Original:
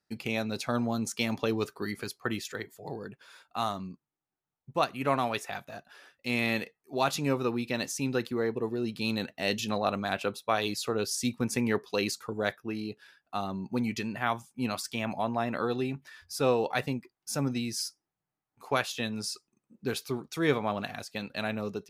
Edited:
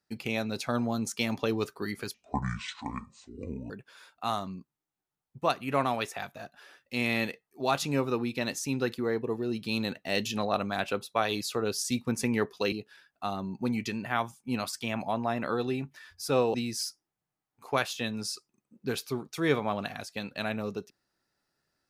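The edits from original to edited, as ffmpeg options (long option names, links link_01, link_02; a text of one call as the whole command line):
ffmpeg -i in.wav -filter_complex "[0:a]asplit=5[link_01][link_02][link_03][link_04][link_05];[link_01]atrim=end=2.144[link_06];[link_02]atrim=start=2.14:end=3.03,asetpts=PTS-STARTPTS,asetrate=25137,aresample=44100[link_07];[link_03]atrim=start=3.026:end=12.052[link_08];[link_04]atrim=start=12.828:end=16.652[link_09];[link_05]atrim=start=17.528[link_10];[link_06][link_07]acrossfade=duration=0.004:curve1=hsin:curve2=hsin[link_11];[link_11][link_08]acrossfade=duration=0.004:curve1=hsin:curve2=hsin[link_12];[link_12][link_09]acrossfade=duration=0.004:curve1=hsin:curve2=hsin[link_13];[link_13][link_10]acrossfade=duration=0.004:curve1=hsin:curve2=hsin" out.wav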